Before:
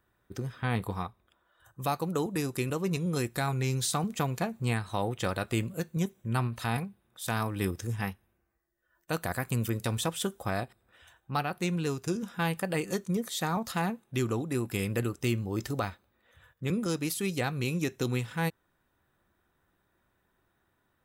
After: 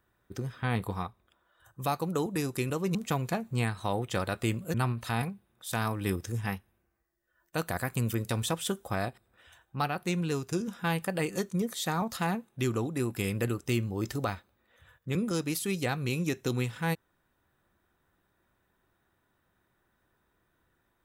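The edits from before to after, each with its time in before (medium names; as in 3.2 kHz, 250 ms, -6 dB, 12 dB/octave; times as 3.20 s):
2.95–4.04 s: delete
5.83–6.29 s: delete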